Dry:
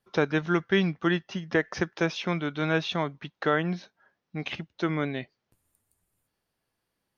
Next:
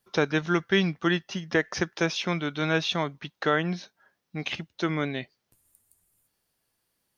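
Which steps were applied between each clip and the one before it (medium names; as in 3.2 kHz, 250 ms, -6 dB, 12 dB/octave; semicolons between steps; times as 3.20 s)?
treble shelf 4.4 kHz +11 dB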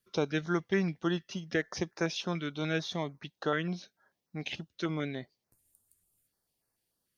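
step-sequenced notch 6.8 Hz 810–3200 Hz; trim -5 dB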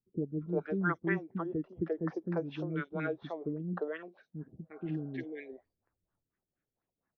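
LFO low-pass sine 4.2 Hz 300–1800 Hz; spectral replace 4.40–5.16 s, 490–1600 Hz both; three bands offset in time lows, mids, highs 350/400 ms, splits 380/4600 Hz; trim -2.5 dB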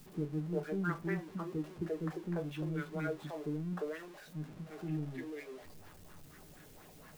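jump at every zero crossing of -43.5 dBFS; reverberation RT60 0.20 s, pre-delay 5 ms, DRR 6 dB; trim -6 dB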